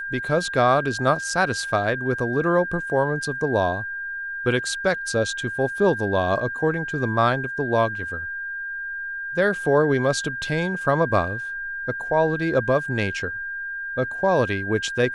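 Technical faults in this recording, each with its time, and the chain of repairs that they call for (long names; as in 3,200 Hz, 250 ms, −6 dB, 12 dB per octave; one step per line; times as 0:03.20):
whistle 1,600 Hz −28 dBFS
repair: notch filter 1,600 Hz, Q 30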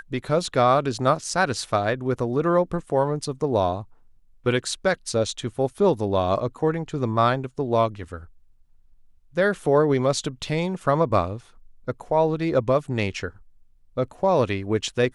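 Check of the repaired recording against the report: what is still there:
none of them is left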